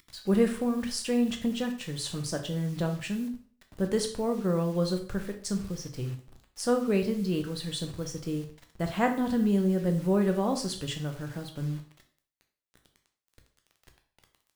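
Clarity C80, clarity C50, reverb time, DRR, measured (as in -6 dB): 14.0 dB, 10.0 dB, 0.45 s, 4.5 dB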